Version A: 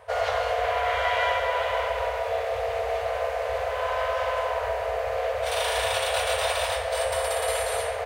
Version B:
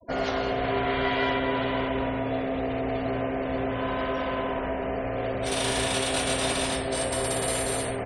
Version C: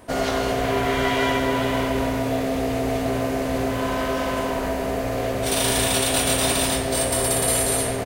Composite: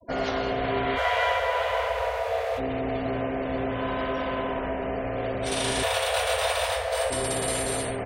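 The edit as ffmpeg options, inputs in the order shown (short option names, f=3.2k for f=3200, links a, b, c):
-filter_complex "[0:a]asplit=2[a][b];[1:a]asplit=3[c][d][e];[c]atrim=end=0.99[f];[a]atrim=start=0.95:end=2.61[g];[d]atrim=start=2.57:end=5.832[h];[b]atrim=start=5.828:end=7.102[i];[e]atrim=start=7.098[j];[f][g]acrossfade=d=0.04:c1=tri:c2=tri[k];[k][h]acrossfade=d=0.04:c1=tri:c2=tri[l];[l][i]acrossfade=d=0.004:c1=hsin:c2=hsin[m];[m][j]acrossfade=d=0.004:c1=hsin:c2=hsin"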